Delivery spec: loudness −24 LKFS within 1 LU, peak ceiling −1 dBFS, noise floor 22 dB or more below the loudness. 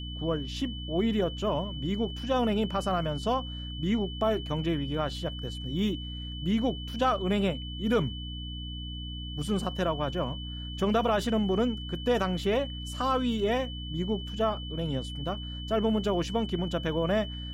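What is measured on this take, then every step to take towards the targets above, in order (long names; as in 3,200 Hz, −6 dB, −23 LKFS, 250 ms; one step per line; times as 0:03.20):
mains hum 60 Hz; hum harmonics up to 300 Hz; level of the hum −36 dBFS; interfering tone 3,000 Hz; level of the tone −41 dBFS; integrated loudness −30.0 LKFS; sample peak −14.5 dBFS; target loudness −24.0 LKFS
→ hum removal 60 Hz, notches 5
notch filter 3,000 Hz, Q 30
level +6 dB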